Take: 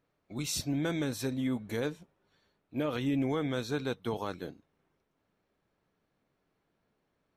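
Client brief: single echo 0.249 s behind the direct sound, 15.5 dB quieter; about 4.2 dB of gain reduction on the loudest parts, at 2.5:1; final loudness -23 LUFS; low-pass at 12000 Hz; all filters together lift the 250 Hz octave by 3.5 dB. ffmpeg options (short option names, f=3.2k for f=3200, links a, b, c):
-af "lowpass=12k,equalizer=f=250:t=o:g=4,acompressor=threshold=-30dB:ratio=2.5,aecho=1:1:249:0.168,volume=11.5dB"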